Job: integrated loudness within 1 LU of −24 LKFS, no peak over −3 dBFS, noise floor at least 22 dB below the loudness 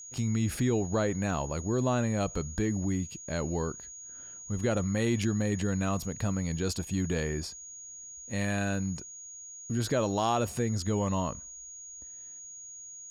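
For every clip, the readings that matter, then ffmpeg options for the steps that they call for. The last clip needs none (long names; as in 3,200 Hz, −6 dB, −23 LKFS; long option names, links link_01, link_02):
interfering tone 6,700 Hz; level of the tone −43 dBFS; integrated loudness −31.0 LKFS; sample peak −17.0 dBFS; target loudness −24.0 LKFS
→ -af "bandreject=frequency=6700:width=30"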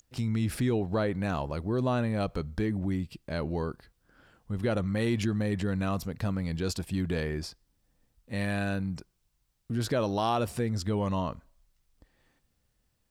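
interfering tone none found; integrated loudness −31.0 LKFS; sample peak −17.0 dBFS; target loudness −24.0 LKFS
→ -af "volume=7dB"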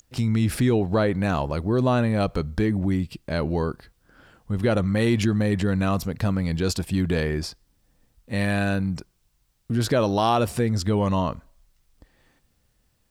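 integrated loudness −24.0 LKFS; sample peak −10.0 dBFS; background noise floor −68 dBFS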